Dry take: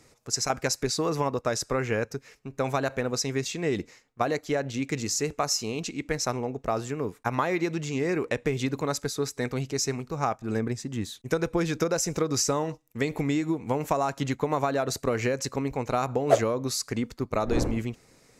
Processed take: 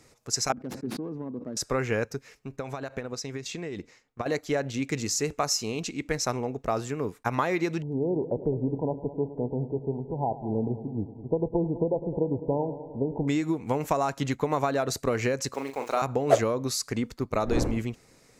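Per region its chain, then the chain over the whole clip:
0:00.52–0:01.57: phase distortion by the signal itself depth 0.16 ms + resonant band-pass 240 Hz, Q 2.8 + level that may fall only so fast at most 38 dB per second
0:02.56–0:04.26: high-shelf EQ 9,800 Hz −9.5 dB + downward compressor, threshold −32 dBFS + transient designer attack +5 dB, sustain −3 dB
0:07.82–0:13.28: linear-phase brick-wall low-pass 1,000 Hz + upward compression, threshold −35 dBFS + echo machine with several playback heads 104 ms, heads first and second, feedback 59%, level −17 dB
0:15.54–0:16.02: high-pass filter 400 Hz + centre clipping without the shift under −46 dBFS + double-tracking delay 37 ms −7 dB
whole clip: no processing

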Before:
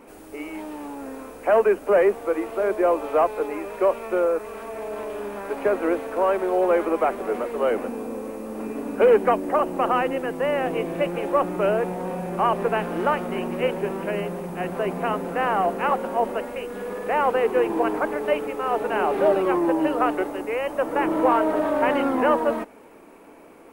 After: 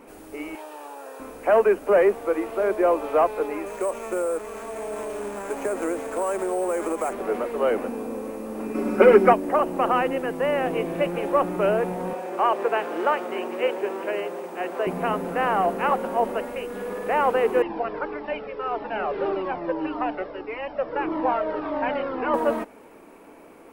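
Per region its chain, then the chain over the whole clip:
0:00.55–0:01.20: high-pass filter 450 Hz 24 dB per octave + notch filter 2,100 Hz, Q 7.2
0:03.66–0:07.13: sample-rate reduction 8,900 Hz + downward compressor 4 to 1, threshold −22 dBFS
0:08.74–0:09.33: parametric band 5,300 Hz +5 dB 0.31 octaves + comb filter 5.4 ms, depth 78% + hollow resonant body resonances 300/1,300/2,100 Hz, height 9 dB, ringing for 20 ms
0:12.13–0:14.87: high-pass filter 300 Hz 24 dB per octave + parametric band 11,000 Hz −11.5 dB 0.24 octaves
0:17.62–0:22.34: linear-phase brick-wall low-pass 5,600 Hz + flanger whose copies keep moving one way falling 1.7 Hz
whole clip: no processing

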